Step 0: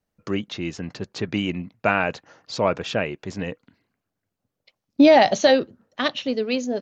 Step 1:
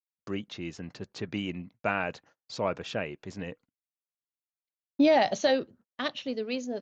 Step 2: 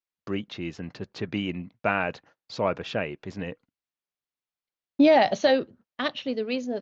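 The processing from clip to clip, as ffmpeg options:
-af "agate=range=0.0158:threshold=0.00562:ratio=16:detection=peak,volume=0.376"
-af "lowpass=4600,volume=1.58"

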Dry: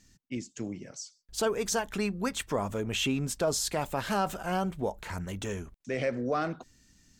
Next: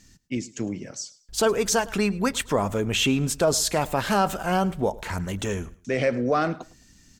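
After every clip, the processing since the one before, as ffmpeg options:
-af "aecho=1:1:107|214:0.0891|0.025,volume=2.24"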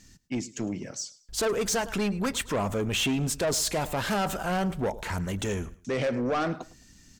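-af "asoftclip=type=tanh:threshold=0.075"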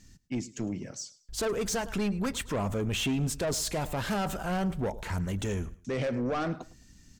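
-af "lowshelf=f=210:g=6.5,volume=0.596"

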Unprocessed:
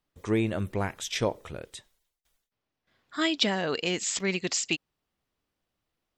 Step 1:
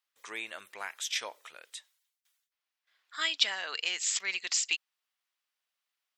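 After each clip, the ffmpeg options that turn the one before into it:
-af "highpass=1400"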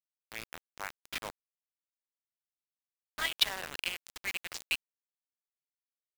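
-af "aeval=exprs='val(0)+0.00224*(sin(2*PI*50*n/s)+sin(2*PI*2*50*n/s)/2+sin(2*PI*3*50*n/s)/3+sin(2*PI*4*50*n/s)/4+sin(2*PI*5*50*n/s)/5)':c=same,adynamicsmooth=sensitivity=2.5:basefreq=970,acrusher=bits=5:mix=0:aa=0.000001"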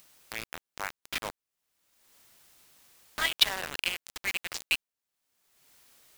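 -af "acompressor=mode=upward:threshold=0.0112:ratio=2.5,volume=1.68"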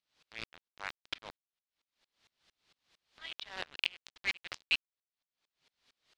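-filter_complex "[0:a]asplit=2[s0][s1];[s1]acrusher=bits=4:mix=0:aa=0.000001,volume=0.355[s2];[s0][s2]amix=inputs=2:normalize=0,lowpass=f=4100:t=q:w=1.6,aeval=exprs='val(0)*pow(10,-31*if(lt(mod(-4.4*n/s,1),2*abs(-4.4)/1000),1-mod(-4.4*n/s,1)/(2*abs(-4.4)/1000),(mod(-4.4*n/s,1)-2*abs(-4.4)/1000)/(1-2*abs(-4.4)/1000))/20)':c=same,volume=0.75"

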